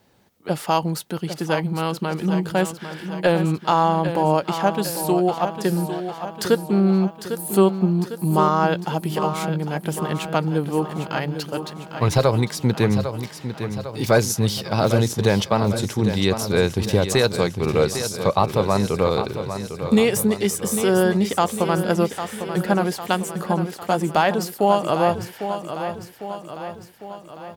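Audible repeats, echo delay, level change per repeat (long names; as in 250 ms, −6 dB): 6, 802 ms, −5.0 dB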